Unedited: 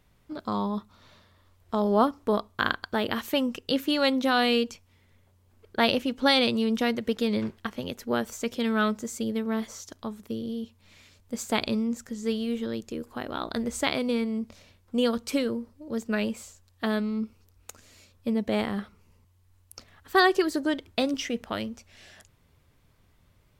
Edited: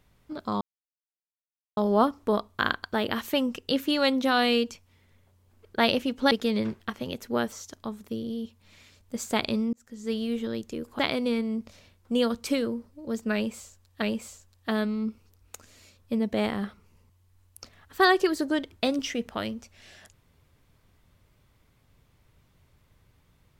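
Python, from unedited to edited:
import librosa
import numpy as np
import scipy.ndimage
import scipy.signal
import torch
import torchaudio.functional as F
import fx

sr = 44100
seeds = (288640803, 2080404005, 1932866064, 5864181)

y = fx.edit(x, sr, fx.silence(start_s=0.61, length_s=1.16),
    fx.cut(start_s=6.31, length_s=0.77),
    fx.cut(start_s=8.29, length_s=1.42),
    fx.fade_in_span(start_s=11.92, length_s=0.47),
    fx.cut(start_s=13.18, length_s=0.64),
    fx.repeat(start_s=16.17, length_s=0.68, count=2), tone=tone)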